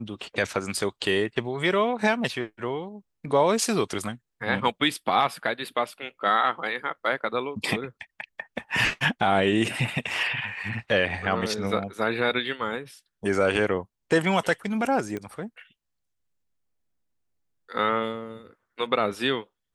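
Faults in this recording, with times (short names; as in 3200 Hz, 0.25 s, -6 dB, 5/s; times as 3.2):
15.17 pop -20 dBFS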